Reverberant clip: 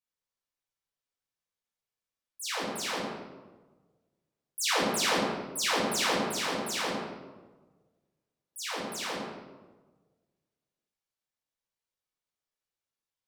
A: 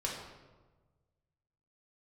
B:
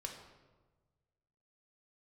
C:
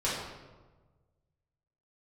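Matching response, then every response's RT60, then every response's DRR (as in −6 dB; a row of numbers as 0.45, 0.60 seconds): C; 1.3, 1.3, 1.3 seconds; −3.5, 1.5, −9.5 decibels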